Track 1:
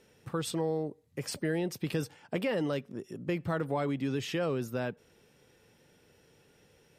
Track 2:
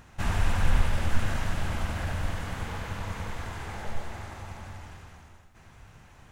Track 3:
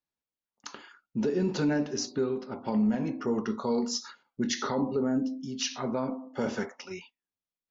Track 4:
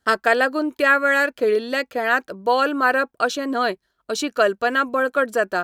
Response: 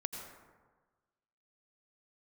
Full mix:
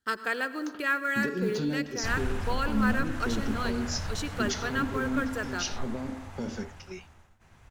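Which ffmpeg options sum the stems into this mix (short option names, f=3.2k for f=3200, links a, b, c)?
-filter_complex "[1:a]agate=range=-33dB:threshold=-51dB:ratio=3:detection=peak,alimiter=limit=-18dB:level=0:latency=1:release=353,adelay=1850,volume=-6dB,asplit=2[a][b];[b]volume=-10dB[c];[2:a]agate=range=-33dB:threshold=-39dB:ratio=3:detection=peak,acrossover=split=340|3000[d][e][f];[e]acompressor=threshold=-41dB:ratio=6[g];[d][g][f]amix=inputs=3:normalize=0,volume=-1dB[h];[3:a]equalizer=f=660:t=o:w=0.71:g=-12,acrusher=bits=7:mode=log:mix=0:aa=0.000001,volume=-13dB,asplit=2[i][j];[j]volume=-5.5dB[k];[4:a]atrim=start_sample=2205[l];[c][k]amix=inputs=2:normalize=0[m];[m][l]afir=irnorm=-1:irlink=0[n];[a][h][i][n]amix=inputs=4:normalize=0"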